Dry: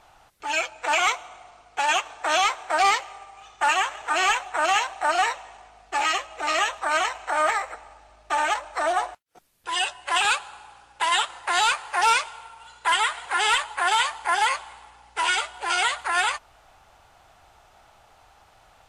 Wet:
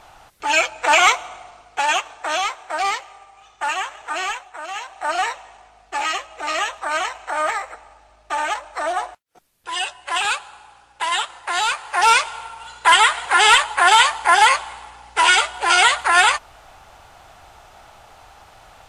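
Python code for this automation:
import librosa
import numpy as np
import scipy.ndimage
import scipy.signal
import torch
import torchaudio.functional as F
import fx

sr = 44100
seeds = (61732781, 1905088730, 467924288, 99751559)

y = fx.gain(x, sr, db=fx.line((1.28, 8.0), (2.54, -2.0), (4.16, -2.0), (4.66, -10.5), (5.12, 0.5), (11.68, 0.5), (12.37, 9.0)))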